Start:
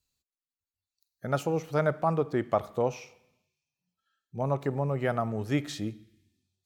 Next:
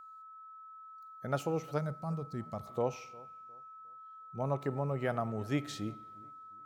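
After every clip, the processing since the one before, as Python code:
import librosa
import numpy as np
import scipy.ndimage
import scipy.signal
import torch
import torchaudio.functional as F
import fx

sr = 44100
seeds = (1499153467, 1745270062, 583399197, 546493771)

y = fx.spec_box(x, sr, start_s=1.78, length_s=0.88, low_hz=250.0, high_hz=3800.0, gain_db=-12)
y = y + 10.0 ** (-44.0 / 20.0) * np.sin(2.0 * np.pi * 1300.0 * np.arange(len(y)) / sr)
y = fx.echo_wet_lowpass(y, sr, ms=356, feedback_pct=31, hz=1400.0, wet_db=-22)
y = F.gain(torch.from_numpy(y), -5.0).numpy()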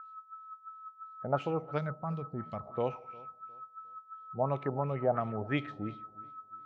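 y = fx.filter_lfo_lowpass(x, sr, shape='sine', hz=2.9, low_hz=690.0, high_hz=3600.0, q=2.8)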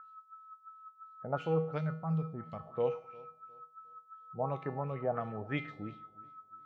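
y = fx.comb_fb(x, sr, f0_hz=160.0, decay_s=0.48, harmonics='odd', damping=0.0, mix_pct=80)
y = F.gain(torch.from_numpy(y), 8.5).numpy()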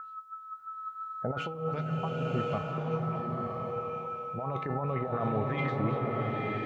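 y = fx.over_compress(x, sr, threshold_db=-39.0, ratio=-1.0)
y = fx.rev_bloom(y, sr, seeds[0], attack_ms=1060, drr_db=-0.5)
y = F.gain(torch.from_numpy(y), 6.0).numpy()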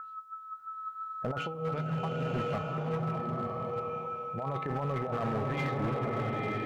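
y = np.clip(x, -10.0 ** (-27.0 / 20.0), 10.0 ** (-27.0 / 20.0))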